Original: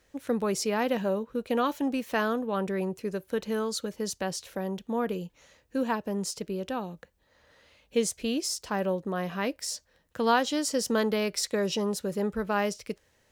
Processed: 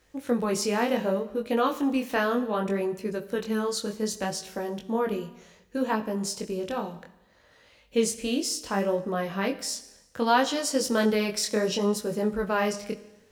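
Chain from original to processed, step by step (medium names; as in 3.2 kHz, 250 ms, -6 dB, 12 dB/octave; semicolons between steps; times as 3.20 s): Schroeder reverb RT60 1 s, combs from 29 ms, DRR 13.5 dB; chorus 0.66 Hz, delay 18 ms, depth 7 ms; trim +5 dB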